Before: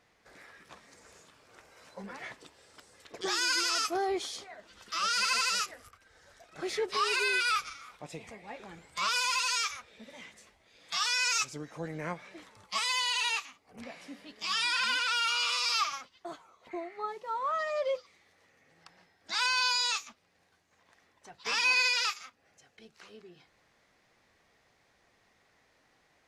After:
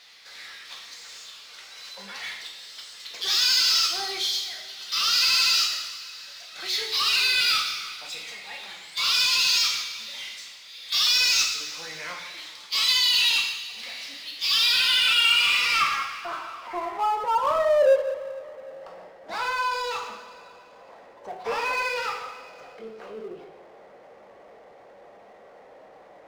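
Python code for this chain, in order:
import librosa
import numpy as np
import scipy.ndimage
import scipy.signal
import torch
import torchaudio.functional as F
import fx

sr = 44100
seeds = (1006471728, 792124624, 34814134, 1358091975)

y = fx.filter_sweep_bandpass(x, sr, from_hz=4000.0, to_hz=570.0, start_s=14.66, end_s=17.72, q=2.4)
y = fx.rev_double_slope(y, sr, seeds[0], early_s=0.71, late_s=2.4, knee_db=-18, drr_db=0.5)
y = fx.power_curve(y, sr, exponent=0.7)
y = y * librosa.db_to_amplitude(8.5)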